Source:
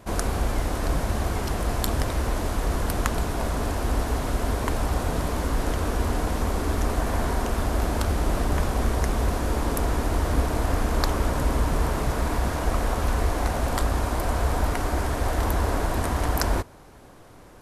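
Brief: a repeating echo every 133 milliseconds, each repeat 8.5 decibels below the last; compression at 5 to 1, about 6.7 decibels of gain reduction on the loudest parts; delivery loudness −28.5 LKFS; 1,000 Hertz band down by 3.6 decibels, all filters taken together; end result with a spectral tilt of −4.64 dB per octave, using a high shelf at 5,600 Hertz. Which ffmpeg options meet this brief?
ffmpeg -i in.wav -af "equalizer=frequency=1000:width_type=o:gain=-5,highshelf=frequency=5600:gain=6.5,acompressor=threshold=-26dB:ratio=5,aecho=1:1:133|266|399|532:0.376|0.143|0.0543|0.0206,volume=2.5dB" out.wav

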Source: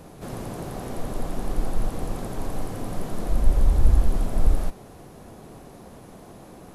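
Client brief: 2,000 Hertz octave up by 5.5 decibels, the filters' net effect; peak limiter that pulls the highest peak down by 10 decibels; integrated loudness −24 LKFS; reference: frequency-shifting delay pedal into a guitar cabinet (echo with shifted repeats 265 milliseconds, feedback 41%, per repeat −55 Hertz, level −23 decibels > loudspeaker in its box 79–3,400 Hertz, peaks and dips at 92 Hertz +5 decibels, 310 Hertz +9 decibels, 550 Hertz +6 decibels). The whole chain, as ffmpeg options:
ffmpeg -i in.wav -filter_complex "[0:a]equalizer=frequency=2000:width_type=o:gain=7,alimiter=limit=-15dB:level=0:latency=1,asplit=4[link_01][link_02][link_03][link_04];[link_02]adelay=265,afreqshift=-55,volume=-23dB[link_05];[link_03]adelay=530,afreqshift=-110,volume=-30.7dB[link_06];[link_04]adelay=795,afreqshift=-165,volume=-38.5dB[link_07];[link_01][link_05][link_06][link_07]amix=inputs=4:normalize=0,highpass=79,equalizer=frequency=92:width_type=q:width=4:gain=5,equalizer=frequency=310:width_type=q:width=4:gain=9,equalizer=frequency=550:width_type=q:width=4:gain=6,lowpass=frequency=3400:width=0.5412,lowpass=frequency=3400:width=1.3066,volume=8.5dB" out.wav

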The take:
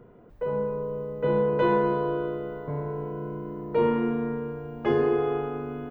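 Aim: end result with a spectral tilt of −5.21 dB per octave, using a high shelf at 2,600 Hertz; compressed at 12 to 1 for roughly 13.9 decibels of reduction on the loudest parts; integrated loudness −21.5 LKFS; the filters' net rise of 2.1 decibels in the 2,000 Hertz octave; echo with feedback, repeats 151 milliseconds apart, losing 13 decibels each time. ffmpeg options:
ffmpeg -i in.wav -af "equalizer=frequency=2000:width_type=o:gain=6.5,highshelf=frequency=2600:gain=-8.5,acompressor=threshold=-33dB:ratio=12,aecho=1:1:151|302|453:0.224|0.0493|0.0108,volume=16dB" out.wav

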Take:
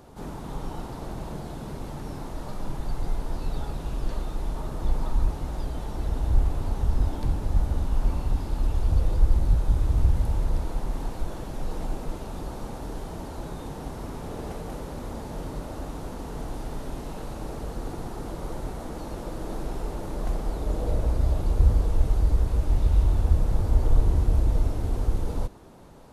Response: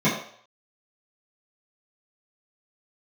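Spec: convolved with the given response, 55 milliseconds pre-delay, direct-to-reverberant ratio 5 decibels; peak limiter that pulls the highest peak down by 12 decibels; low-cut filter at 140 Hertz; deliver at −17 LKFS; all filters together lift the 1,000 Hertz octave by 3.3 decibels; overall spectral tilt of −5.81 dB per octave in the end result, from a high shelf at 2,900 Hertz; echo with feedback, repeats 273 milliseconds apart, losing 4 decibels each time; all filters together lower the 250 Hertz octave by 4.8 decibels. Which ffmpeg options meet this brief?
-filter_complex "[0:a]highpass=140,equalizer=frequency=250:width_type=o:gain=-6,equalizer=frequency=1000:width_type=o:gain=5,highshelf=frequency=2900:gain=-4.5,alimiter=level_in=8.5dB:limit=-24dB:level=0:latency=1,volume=-8.5dB,aecho=1:1:273|546|819|1092|1365|1638|1911|2184|2457:0.631|0.398|0.25|0.158|0.0994|0.0626|0.0394|0.0249|0.0157,asplit=2[link_01][link_02];[1:a]atrim=start_sample=2205,adelay=55[link_03];[link_02][link_03]afir=irnorm=-1:irlink=0,volume=-22dB[link_04];[link_01][link_04]amix=inputs=2:normalize=0,volume=19.5dB"

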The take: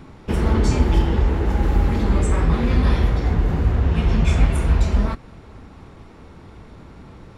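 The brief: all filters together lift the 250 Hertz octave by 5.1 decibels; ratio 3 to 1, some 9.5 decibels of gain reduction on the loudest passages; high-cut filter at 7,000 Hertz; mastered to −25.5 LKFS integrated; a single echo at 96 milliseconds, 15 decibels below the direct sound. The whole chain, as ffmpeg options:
ffmpeg -i in.wav -af "lowpass=7000,equalizer=frequency=250:width_type=o:gain=6.5,acompressor=threshold=-24dB:ratio=3,aecho=1:1:96:0.178,volume=1.5dB" out.wav

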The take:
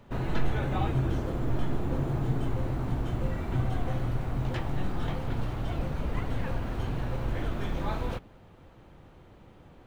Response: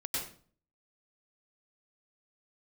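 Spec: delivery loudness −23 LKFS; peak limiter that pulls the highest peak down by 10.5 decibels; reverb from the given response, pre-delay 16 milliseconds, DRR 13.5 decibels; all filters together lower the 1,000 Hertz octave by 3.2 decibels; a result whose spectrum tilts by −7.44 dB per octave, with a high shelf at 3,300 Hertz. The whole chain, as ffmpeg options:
-filter_complex "[0:a]equalizer=frequency=1000:width_type=o:gain=-3.5,highshelf=frequency=3300:gain=-9,alimiter=level_in=1.5dB:limit=-24dB:level=0:latency=1,volume=-1.5dB,asplit=2[link_01][link_02];[1:a]atrim=start_sample=2205,adelay=16[link_03];[link_02][link_03]afir=irnorm=-1:irlink=0,volume=-17dB[link_04];[link_01][link_04]amix=inputs=2:normalize=0,volume=13dB"

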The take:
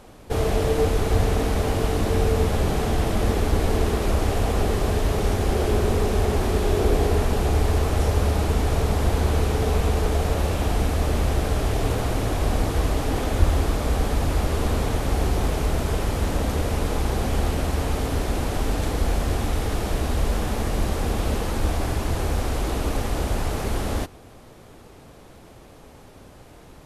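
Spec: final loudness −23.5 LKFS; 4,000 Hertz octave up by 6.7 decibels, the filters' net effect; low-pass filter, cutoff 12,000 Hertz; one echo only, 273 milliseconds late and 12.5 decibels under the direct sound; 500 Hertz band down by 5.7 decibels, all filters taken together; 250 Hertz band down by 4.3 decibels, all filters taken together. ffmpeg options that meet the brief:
ffmpeg -i in.wav -af "lowpass=12000,equalizer=frequency=250:width_type=o:gain=-4,equalizer=frequency=500:width_type=o:gain=-6,equalizer=frequency=4000:width_type=o:gain=8.5,aecho=1:1:273:0.237,volume=1dB" out.wav

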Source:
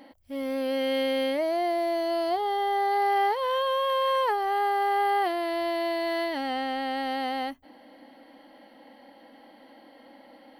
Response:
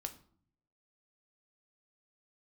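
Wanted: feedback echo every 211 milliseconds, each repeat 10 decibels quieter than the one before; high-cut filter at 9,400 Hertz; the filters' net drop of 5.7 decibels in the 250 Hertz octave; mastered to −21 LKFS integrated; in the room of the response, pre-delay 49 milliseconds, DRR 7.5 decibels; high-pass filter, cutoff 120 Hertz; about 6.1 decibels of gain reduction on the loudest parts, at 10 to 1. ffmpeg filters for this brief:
-filter_complex "[0:a]highpass=120,lowpass=9400,equalizer=frequency=250:width_type=o:gain=-7.5,acompressor=threshold=-28dB:ratio=10,aecho=1:1:211|422|633|844:0.316|0.101|0.0324|0.0104,asplit=2[link_01][link_02];[1:a]atrim=start_sample=2205,adelay=49[link_03];[link_02][link_03]afir=irnorm=-1:irlink=0,volume=-5dB[link_04];[link_01][link_04]amix=inputs=2:normalize=0,volume=10dB"

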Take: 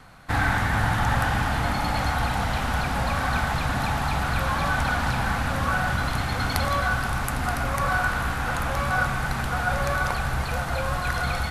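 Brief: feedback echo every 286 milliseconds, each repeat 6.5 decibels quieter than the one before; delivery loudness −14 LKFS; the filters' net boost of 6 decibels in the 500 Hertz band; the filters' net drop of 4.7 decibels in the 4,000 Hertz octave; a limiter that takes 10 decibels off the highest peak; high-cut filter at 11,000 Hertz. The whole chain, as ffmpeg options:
ffmpeg -i in.wav -af "lowpass=11000,equalizer=frequency=500:width_type=o:gain=7.5,equalizer=frequency=4000:width_type=o:gain=-6,alimiter=limit=-16.5dB:level=0:latency=1,aecho=1:1:286|572|858|1144|1430|1716:0.473|0.222|0.105|0.0491|0.0231|0.0109,volume=11dB" out.wav

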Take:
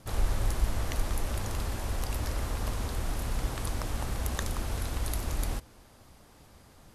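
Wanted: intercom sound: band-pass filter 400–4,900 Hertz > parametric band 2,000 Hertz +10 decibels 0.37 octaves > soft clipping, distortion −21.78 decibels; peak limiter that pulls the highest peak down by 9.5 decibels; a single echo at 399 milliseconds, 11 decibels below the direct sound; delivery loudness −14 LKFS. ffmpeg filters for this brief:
ffmpeg -i in.wav -af "alimiter=limit=-23dB:level=0:latency=1,highpass=400,lowpass=4900,equalizer=frequency=2000:width_type=o:width=0.37:gain=10,aecho=1:1:399:0.282,asoftclip=threshold=-29.5dB,volume=27dB" out.wav

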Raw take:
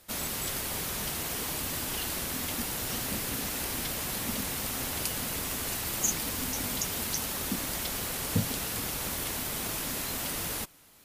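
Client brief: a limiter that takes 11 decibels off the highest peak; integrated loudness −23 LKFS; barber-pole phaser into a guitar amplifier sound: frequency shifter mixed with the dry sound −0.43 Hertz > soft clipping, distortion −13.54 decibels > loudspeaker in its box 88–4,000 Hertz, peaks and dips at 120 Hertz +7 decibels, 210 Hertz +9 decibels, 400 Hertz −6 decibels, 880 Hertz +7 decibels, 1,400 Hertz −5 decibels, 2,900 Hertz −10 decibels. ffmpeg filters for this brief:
ffmpeg -i in.wav -filter_complex "[0:a]alimiter=limit=-24dB:level=0:latency=1,asplit=2[link_01][link_02];[link_02]afreqshift=-0.43[link_03];[link_01][link_03]amix=inputs=2:normalize=1,asoftclip=threshold=-35dB,highpass=88,equalizer=frequency=120:width_type=q:width=4:gain=7,equalizer=frequency=210:width_type=q:width=4:gain=9,equalizer=frequency=400:width_type=q:width=4:gain=-6,equalizer=frequency=880:width_type=q:width=4:gain=7,equalizer=frequency=1400:width_type=q:width=4:gain=-5,equalizer=frequency=2900:width_type=q:width=4:gain=-10,lowpass=frequency=4000:width=0.5412,lowpass=frequency=4000:width=1.3066,volume=20dB" out.wav

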